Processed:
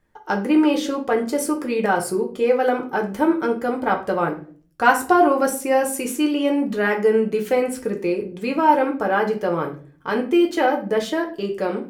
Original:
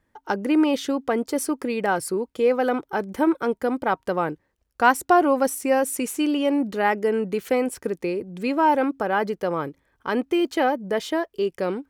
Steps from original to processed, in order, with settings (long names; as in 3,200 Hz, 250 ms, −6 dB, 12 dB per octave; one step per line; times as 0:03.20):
rectangular room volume 31 cubic metres, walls mixed, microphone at 0.45 metres